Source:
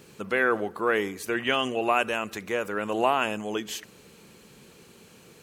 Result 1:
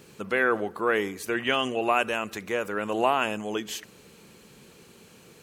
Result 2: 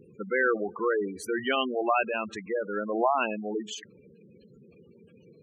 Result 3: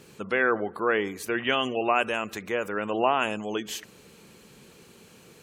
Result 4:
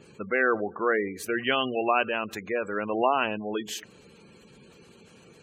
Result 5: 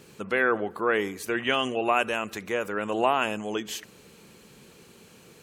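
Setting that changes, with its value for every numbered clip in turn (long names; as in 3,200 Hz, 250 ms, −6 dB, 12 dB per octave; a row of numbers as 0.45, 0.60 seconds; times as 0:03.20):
gate on every frequency bin, under each frame's peak: −60, −10, −35, −20, −45 decibels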